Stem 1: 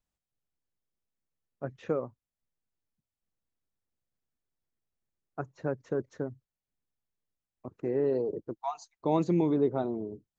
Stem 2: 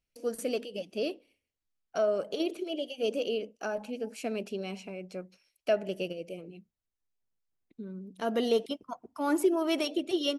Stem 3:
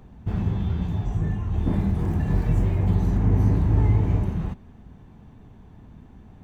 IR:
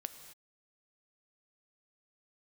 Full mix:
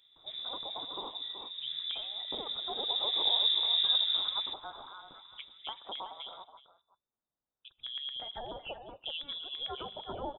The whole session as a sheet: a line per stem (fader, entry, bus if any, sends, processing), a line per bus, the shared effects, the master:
−13.5 dB, 0.00 s, bus A, send −10.5 dB, echo send −17.5 dB, auto-filter low-pass saw down 8.9 Hz 400–2,400 Hz; noise gate with hold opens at −47 dBFS
+2.0 dB, 0.00 s, bus A, send −16.5 dB, echo send −12.5 dB, inverse Chebyshev band-stop filter 250–1,000 Hz, stop band 60 dB; high-shelf EQ 2,400 Hz +9.5 dB
0:02.70 −17 dB → 0:03.14 −9 dB, 0.00 s, no bus, send −6 dB, echo send −19.5 dB, flat-topped bell 830 Hz −11 dB 1.1 octaves
bus A: 0.0 dB, downward compressor, threshold −39 dBFS, peak gain reduction 15.5 dB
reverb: on, pre-delay 3 ms
echo: single-tap delay 374 ms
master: high-pass filter 110 Hz; voice inversion scrambler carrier 3,700 Hz

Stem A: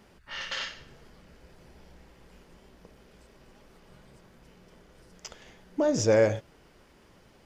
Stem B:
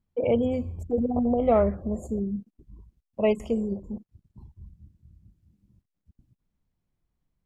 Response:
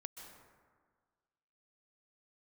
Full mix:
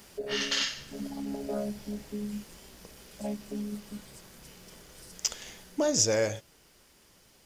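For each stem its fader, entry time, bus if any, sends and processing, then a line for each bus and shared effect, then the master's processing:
−2.5 dB, 0.00 s, no send, high-shelf EQ 3,200 Hz +11.5 dB
−3.0 dB, 0.00 s, no send, channel vocoder with a chord as carrier bare fifth, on C#3; automatic ducking −11 dB, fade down 0.25 s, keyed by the first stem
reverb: not used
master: high-shelf EQ 4,800 Hz +7.5 dB; speech leveller within 4 dB 0.5 s

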